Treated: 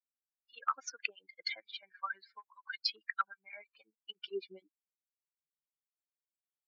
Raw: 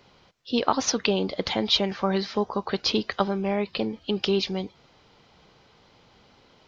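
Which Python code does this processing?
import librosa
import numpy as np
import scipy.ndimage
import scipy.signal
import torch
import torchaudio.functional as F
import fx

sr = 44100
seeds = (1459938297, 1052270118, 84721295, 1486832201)

p1 = fx.bin_expand(x, sr, power=3.0)
p2 = fx.env_lowpass_down(p1, sr, base_hz=1500.0, full_db=-25.0)
p3 = fx.low_shelf(p2, sr, hz=71.0, db=-4.5)
p4 = fx.filter_sweep_highpass(p3, sr, from_hz=1400.0, to_hz=74.0, start_s=3.56, end_s=5.87, q=4.4)
p5 = fx.level_steps(p4, sr, step_db=23)
p6 = p4 + (p5 * librosa.db_to_amplitude(-2.0))
p7 = fx.tilt_shelf(p6, sr, db=-8.5, hz=1400.0)
p8 = fx.harmonic_tremolo(p7, sr, hz=6.4, depth_pct=100, crossover_hz=1400.0)
y = p8 * librosa.db_to_amplitude(-3.5)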